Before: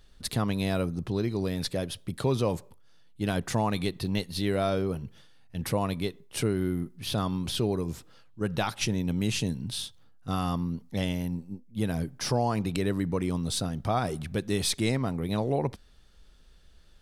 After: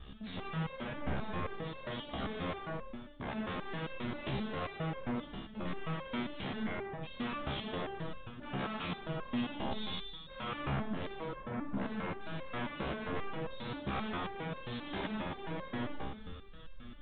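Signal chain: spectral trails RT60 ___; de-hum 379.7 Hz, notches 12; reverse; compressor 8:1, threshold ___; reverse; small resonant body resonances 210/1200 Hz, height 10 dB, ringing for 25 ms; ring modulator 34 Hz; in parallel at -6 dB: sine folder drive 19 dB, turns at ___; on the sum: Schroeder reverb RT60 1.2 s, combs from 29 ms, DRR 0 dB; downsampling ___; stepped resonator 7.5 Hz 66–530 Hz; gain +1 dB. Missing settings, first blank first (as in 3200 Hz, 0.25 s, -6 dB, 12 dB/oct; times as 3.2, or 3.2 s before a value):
0.58 s, -37 dBFS, -23.5 dBFS, 8000 Hz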